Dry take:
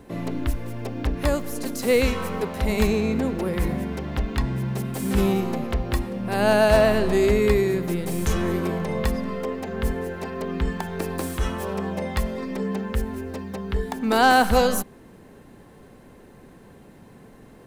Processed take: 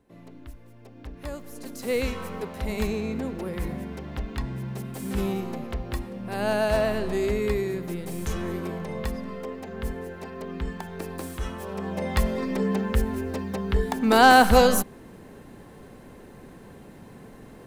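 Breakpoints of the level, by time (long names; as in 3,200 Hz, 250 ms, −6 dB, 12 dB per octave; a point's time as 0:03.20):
0:00.80 −18 dB
0:01.98 −6.5 dB
0:11.67 −6.5 dB
0:12.21 +2 dB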